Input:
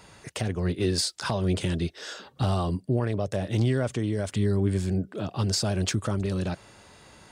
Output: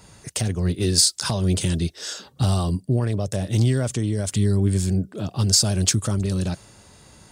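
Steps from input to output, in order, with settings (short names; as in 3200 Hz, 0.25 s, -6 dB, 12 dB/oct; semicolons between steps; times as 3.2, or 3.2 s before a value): tone controls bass +6 dB, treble +14 dB; mismatched tape noise reduction decoder only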